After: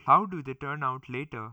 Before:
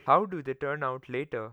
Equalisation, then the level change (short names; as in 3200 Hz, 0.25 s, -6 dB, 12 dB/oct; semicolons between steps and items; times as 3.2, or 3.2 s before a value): fixed phaser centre 2600 Hz, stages 8; +4.0 dB